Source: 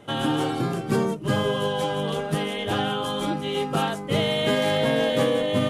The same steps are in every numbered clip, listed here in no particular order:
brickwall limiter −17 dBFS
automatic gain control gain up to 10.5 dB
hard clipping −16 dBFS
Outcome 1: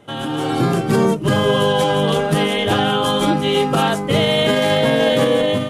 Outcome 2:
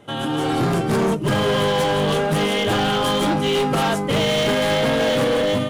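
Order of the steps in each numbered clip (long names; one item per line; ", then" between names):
brickwall limiter, then hard clipping, then automatic gain control
brickwall limiter, then automatic gain control, then hard clipping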